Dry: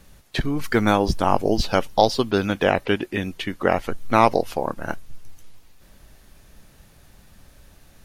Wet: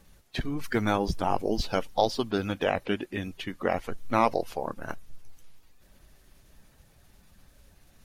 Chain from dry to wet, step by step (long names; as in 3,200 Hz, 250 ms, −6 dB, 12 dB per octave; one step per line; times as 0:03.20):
spectral magnitudes quantised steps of 15 dB
level −7 dB